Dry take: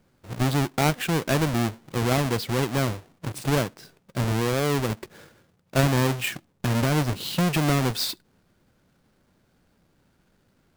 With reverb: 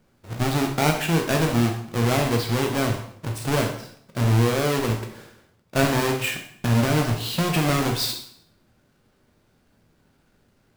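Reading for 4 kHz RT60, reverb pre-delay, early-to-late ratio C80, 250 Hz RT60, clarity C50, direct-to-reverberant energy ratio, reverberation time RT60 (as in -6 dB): 0.60 s, 6 ms, 10.0 dB, 0.70 s, 7.0 dB, 1.5 dB, 0.65 s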